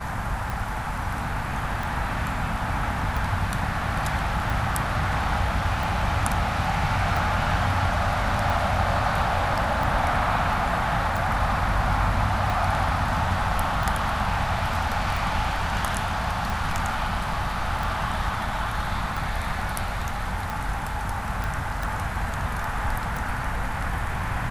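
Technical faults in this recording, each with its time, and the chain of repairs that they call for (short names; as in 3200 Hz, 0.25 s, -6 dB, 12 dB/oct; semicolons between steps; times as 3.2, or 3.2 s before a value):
tick 45 rpm
21.44 pop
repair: de-click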